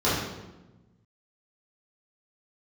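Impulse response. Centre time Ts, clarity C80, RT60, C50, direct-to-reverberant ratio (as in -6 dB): 71 ms, 3.5 dB, 1.1 s, 0.5 dB, -11.5 dB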